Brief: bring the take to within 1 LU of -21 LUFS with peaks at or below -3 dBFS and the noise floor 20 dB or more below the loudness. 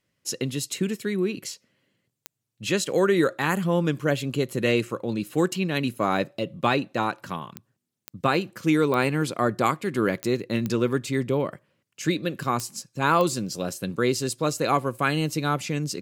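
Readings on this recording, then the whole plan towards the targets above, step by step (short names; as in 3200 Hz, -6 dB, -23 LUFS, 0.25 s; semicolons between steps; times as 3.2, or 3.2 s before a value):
clicks 8; loudness -25.5 LUFS; peak -8.0 dBFS; loudness target -21.0 LUFS
-> de-click; gain +4.5 dB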